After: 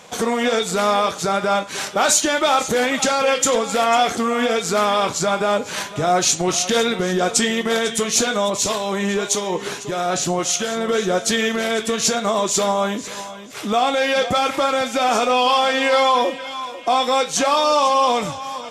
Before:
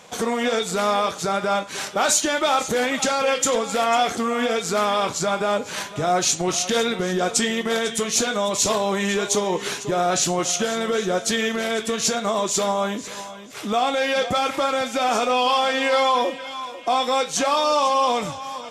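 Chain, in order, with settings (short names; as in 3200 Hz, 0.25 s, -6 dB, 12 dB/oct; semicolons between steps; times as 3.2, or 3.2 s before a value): 8.5–10.89 harmonic tremolo 1.7 Hz, depth 50%, crossover 1400 Hz; gain +3 dB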